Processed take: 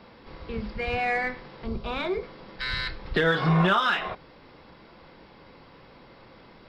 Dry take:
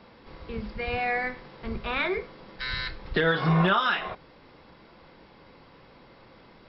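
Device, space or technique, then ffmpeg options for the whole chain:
parallel distortion: -filter_complex "[0:a]asettb=1/sr,asplit=3[a][b][c];[a]atrim=end=1.644[d];[b]atrim=start=1.64:end=2.23,asetpts=PTS-STARTPTS,afade=t=in:d=0.004:c=qsin,afade=t=out:st=0.586:d=0.004:c=qsin,equalizer=f=1.9k:t=o:w=1:g=-11.5[e];[c]atrim=start=2.226[f];[d][e]acrossfade=d=0.004:c1=hsin:c2=qsin[g];[g][f]acrossfade=d=0.004:c1=qsin:c2=hsin,asplit=2[h][i];[i]asoftclip=type=hard:threshold=-28dB,volume=-12dB[j];[h][j]amix=inputs=2:normalize=0"

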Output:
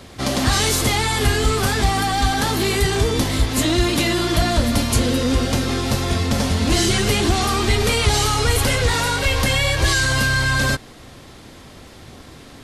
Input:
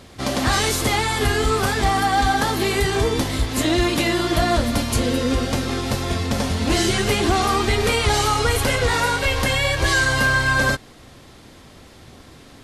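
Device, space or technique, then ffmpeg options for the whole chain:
one-band saturation: -filter_complex "[0:a]acrossover=split=250|2900[a][b][c];[b]asoftclip=type=tanh:threshold=-23.5dB[d];[a][d][c]amix=inputs=3:normalize=0,volume=3.5dB"

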